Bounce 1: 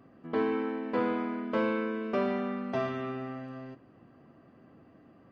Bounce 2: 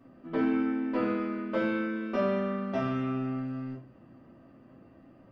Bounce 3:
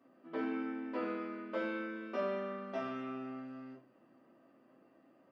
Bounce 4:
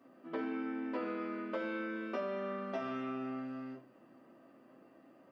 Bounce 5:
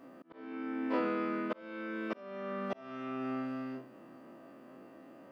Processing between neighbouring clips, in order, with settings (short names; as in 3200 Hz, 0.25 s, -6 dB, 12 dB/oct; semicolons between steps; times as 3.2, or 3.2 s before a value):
shoebox room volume 160 m³, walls furnished, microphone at 2.6 m; gain -5 dB
HPF 310 Hz 12 dB/oct; gain -6.5 dB
compressor, threshold -39 dBFS, peak gain reduction 7.5 dB; gain +4.5 dB
spectral dilation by 60 ms; auto swell 0.606 s; gain +3.5 dB